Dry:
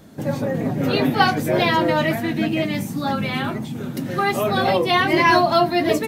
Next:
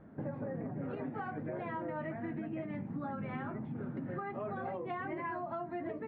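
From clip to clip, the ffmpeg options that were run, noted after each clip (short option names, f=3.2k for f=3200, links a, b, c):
-af "lowpass=f=1.8k:w=0.5412,lowpass=f=1.8k:w=1.3066,alimiter=limit=-15dB:level=0:latency=1:release=363,acompressor=threshold=-27dB:ratio=6,volume=-9dB"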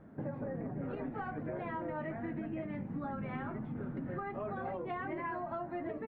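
-filter_complex "[0:a]asplit=7[a][b][c][d][e][f][g];[b]adelay=217,afreqshift=-110,volume=-18.5dB[h];[c]adelay=434,afreqshift=-220,volume=-22.8dB[i];[d]adelay=651,afreqshift=-330,volume=-27.1dB[j];[e]adelay=868,afreqshift=-440,volume=-31.4dB[k];[f]adelay=1085,afreqshift=-550,volume=-35.7dB[l];[g]adelay=1302,afreqshift=-660,volume=-40dB[m];[a][h][i][j][k][l][m]amix=inputs=7:normalize=0"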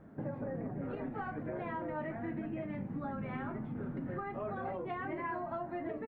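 -filter_complex "[0:a]asplit=2[a][b];[b]adelay=36,volume=-13dB[c];[a][c]amix=inputs=2:normalize=0"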